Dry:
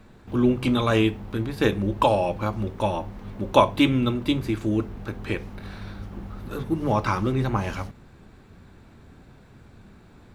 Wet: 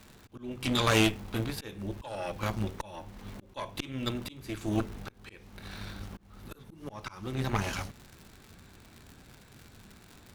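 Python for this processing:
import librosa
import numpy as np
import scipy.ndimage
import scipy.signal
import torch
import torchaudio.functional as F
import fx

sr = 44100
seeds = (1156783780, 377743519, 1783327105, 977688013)

y = fx.high_shelf(x, sr, hz=2200.0, db=11.0)
y = fx.dmg_crackle(y, sr, seeds[0], per_s=150.0, level_db=-35.0)
y = fx.auto_swell(y, sr, attack_ms=491.0)
y = fx.cheby_harmonics(y, sr, harmonics=(6,), levels_db=(-14,), full_scale_db=-6.0)
y = F.gain(torch.from_numpy(y), -5.5).numpy()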